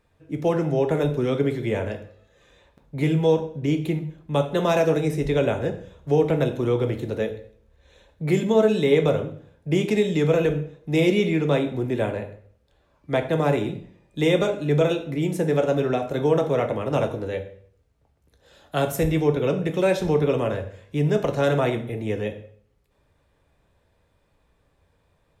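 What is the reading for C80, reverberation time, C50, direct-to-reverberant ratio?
15.0 dB, 0.55 s, 12.0 dB, 5.0 dB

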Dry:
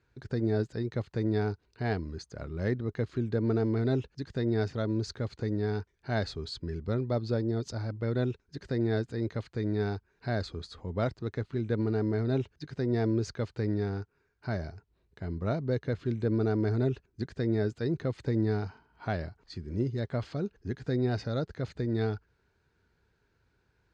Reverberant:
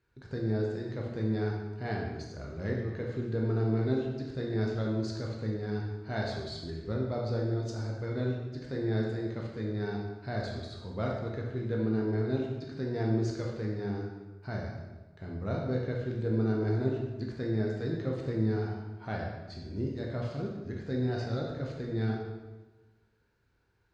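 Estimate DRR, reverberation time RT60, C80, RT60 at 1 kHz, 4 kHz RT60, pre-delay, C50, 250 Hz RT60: -2.0 dB, 1.2 s, 4.5 dB, 1.2 s, 0.95 s, 11 ms, 2.0 dB, 1.3 s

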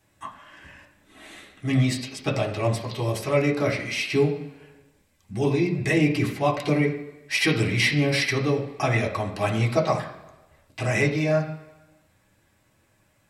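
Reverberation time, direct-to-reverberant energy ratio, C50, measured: 1.1 s, -3.5 dB, 8.5 dB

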